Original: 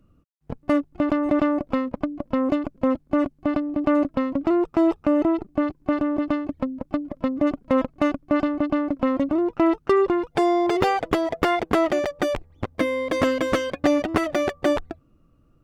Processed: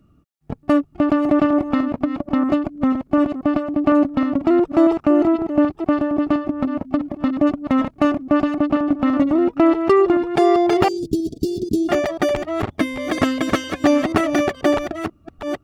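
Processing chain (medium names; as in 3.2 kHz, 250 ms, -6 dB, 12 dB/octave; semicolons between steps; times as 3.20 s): chunks repeated in reverse 487 ms, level -8.5 dB; 10.88–11.89 s: elliptic band-stop 350–4600 Hz, stop band 50 dB; comb of notches 510 Hz; trim +5 dB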